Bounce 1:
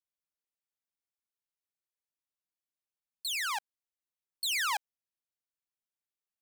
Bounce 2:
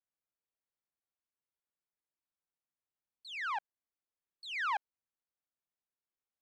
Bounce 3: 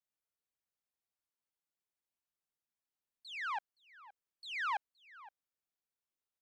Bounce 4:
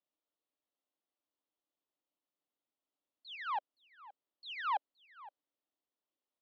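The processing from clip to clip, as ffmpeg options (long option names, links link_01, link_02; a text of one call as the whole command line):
ffmpeg -i in.wav -af "lowpass=1800" out.wav
ffmpeg -i in.wav -filter_complex "[0:a]asplit=2[link_01][link_02];[link_02]adelay=519,volume=-18dB,highshelf=frequency=4000:gain=-11.7[link_03];[link_01][link_03]amix=inputs=2:normalize=0,volume=-2dB" out.wav
ffmpeg -i in.wav -af "highpass=240,equalizer=frequency=290:width_type=q:width=4:gain=10,equalizer=frequency=590:width_type=q:width=4:gain=5,equalizer=frequency=1600:width_type=q:width=4:gain=-10,equalizer=frequency=2300:width_type=q:width=4:gain=-10,lowpass=frequency=3700:width=0.5412,lowpass=frequency=3700:width=1.3066,volume=3.5dB" out.wav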